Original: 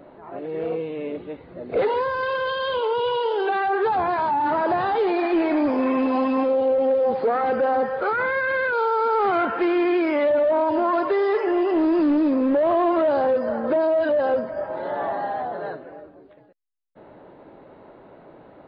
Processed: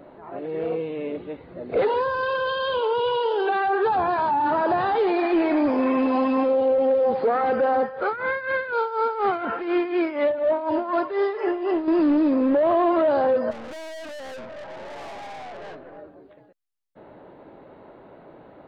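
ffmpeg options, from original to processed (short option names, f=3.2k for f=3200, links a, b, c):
-filter_complex "[0:a]asettb=1/sr,asplit=3[a][b][c];[a]atrim=end=1.844[d];[b]atrim=start=1.84:end=4.78,asetpts=PTS-STARTPTS,afade=t=in:d=0.004:c=qsin,afade=t=out:st=2.936:d=0.004:c=qsin,bandreject=f=2.1k:w=8.4[e];[c]atrim=start=4.776[f];[d][e]acrossfade=d=0.004:c1=hsin:c2=qsin[g];[g][f]acrossfade=d=0.004:c1=qsin:c2=hsin,asettb=1/sr,asplit=3[h][i][j];[h]atrim=end=7.814[k];[i]atrim=start=7.81:end=11.88,asetpts=PTS-STARTPTS,afade=t=in:d=0.004:c=qsin,afade=t=out:st=4.066:d=0.004:c=qsin,tremolo=f=4.1:d=0.72[l];[j]atrim=start=11.876[m];[k][l]acrossfade=d=0.004:c1=hsin:c2=qsin[n];[n][m]acrossfade=d=0.004:c1=qsin:c2=hsin,asplit=3[o][p][q];[o]afade=t=out:st=13.5:d=0.02[r];[p]aeval=exprs='(tanh(63.1*val(0)+0.4)-tanh(0.4))/63.1':c=same,afade=t=in:st=13.5:d=0.02,afade=t=out:st=15.97:d=0.02[s];[q]afade=t=in:st=15.97:d=0.02[t];[r][s][t]amix=inputs=3:normalize=0"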